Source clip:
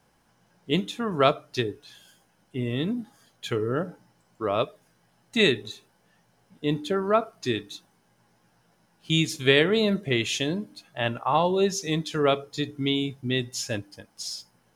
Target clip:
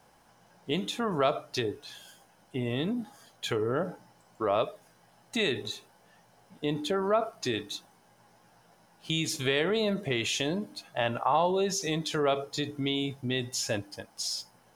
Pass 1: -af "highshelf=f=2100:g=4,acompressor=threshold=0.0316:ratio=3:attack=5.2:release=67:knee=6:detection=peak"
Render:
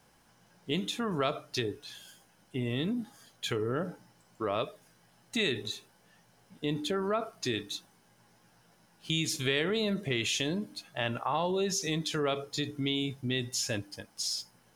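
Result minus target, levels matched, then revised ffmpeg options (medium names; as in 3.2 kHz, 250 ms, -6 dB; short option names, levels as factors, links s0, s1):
1 kHz band -3.0 dB
-af "highshelf=f=2100:g=4,acompressor=threshold=0.0316:ratio=3:attack=5.2:release=67:knee=6:detection=peak,equalizer=f=740:t=o:w=1.4:g=7"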